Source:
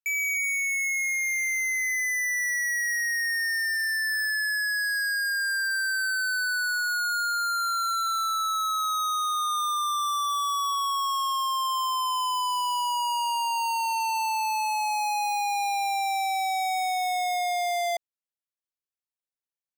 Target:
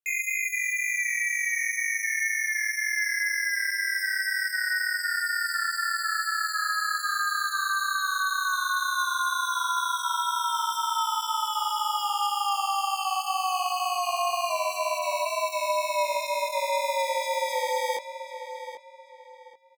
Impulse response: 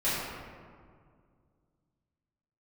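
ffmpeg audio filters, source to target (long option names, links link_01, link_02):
-filter_complex "[0:a]asplit=3[link_01][link_02][link_03];[link_01]afade=type=out:start_time=14.49:duration=0.02[link_04];[link_02]afreqshift=-40,afade=type=in:start_time=14.49:duration=0.02,afade=type=out:start_time=15.24:duration=0.02[link_05];[link_03]afade=type=in:start_time=15.24:duration=0.02[link_06];[link_04][link_05][link_06]amix=inputs=3:normalize=0,flanger=delay=19:depth=3.7:speed=2,aeval=exprs='val(0)*sin(2*PI*190*n/s)':channel_layout=same,asplit=2[link_07][link_08];[link_08]adelay=784,lowpass=frequency=3700:poles=1,volume=-10dB,asplit=2[link_09][link_10];[link_10]adelay=784,lowpass=frequency=3700:poles=1,volume=0.31,asplit=2[link_11][link_12];[link_12]adelay=784,lowpass=frequency=3700:poles=1,volume=0.31[link_13];[link_09][link_11][link_13]amix=inputs=3:normalize=0[link_14];[link_07][link_14]amix=inputs=2:normalize=0,volume=5dB"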